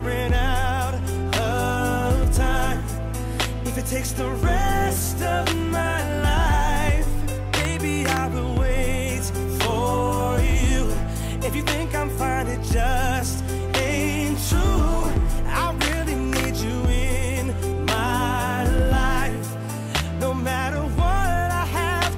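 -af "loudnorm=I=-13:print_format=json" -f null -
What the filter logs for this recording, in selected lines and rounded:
"input_i" : "-23.3",
"input_tp" : "-10.3",
"input_lra" : "1.1",
"input_thresh" : "-33.3",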